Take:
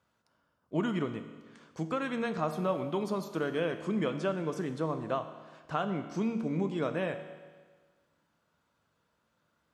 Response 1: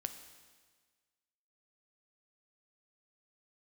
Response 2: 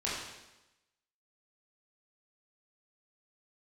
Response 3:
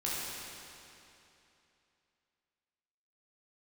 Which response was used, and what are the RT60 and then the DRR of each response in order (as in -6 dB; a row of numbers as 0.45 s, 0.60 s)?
1; 1.5 s, 1.0 s, 2.9 s; 8.0 dB, -8.0 dB, -7.5 dB